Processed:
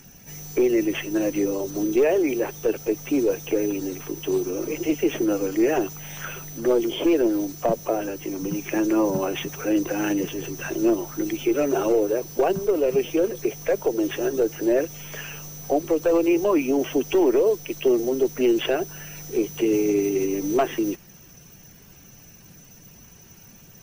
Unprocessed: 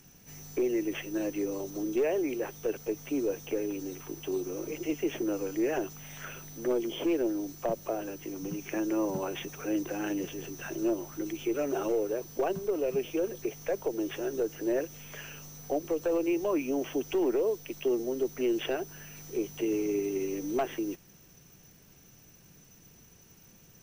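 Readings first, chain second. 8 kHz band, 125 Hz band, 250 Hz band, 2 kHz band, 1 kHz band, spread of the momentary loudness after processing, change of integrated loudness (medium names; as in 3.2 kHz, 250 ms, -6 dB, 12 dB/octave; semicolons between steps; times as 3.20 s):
+8.5 dB, +8.5 dB, +8.5 dB, +8.5 dB, +9.0 dB, 10 LU, +8.5 dB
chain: coarse spectral quantiser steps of 15 dB; trim +9 dB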